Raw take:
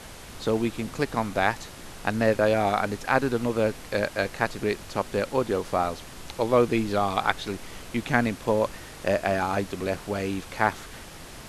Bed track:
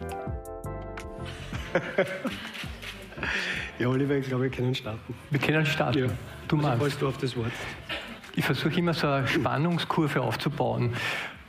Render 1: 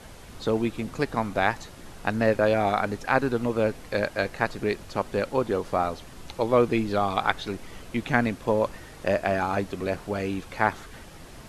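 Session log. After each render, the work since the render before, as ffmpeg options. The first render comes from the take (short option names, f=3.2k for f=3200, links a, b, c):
-af "afftdn=nr=6:nf=-43"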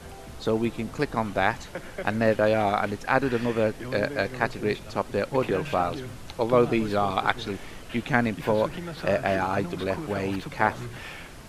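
-filter_complex "[1:a]volume=-10.5dB[a];[0:a][a]amix=inputs=2:normalize=0"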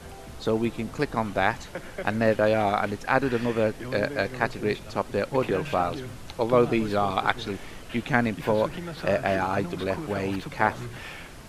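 -af anull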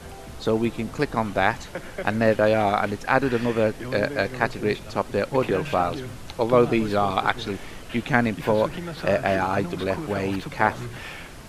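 -af "volume=2.5dB,alimiter=limit=-3dB:level=0:latency=1"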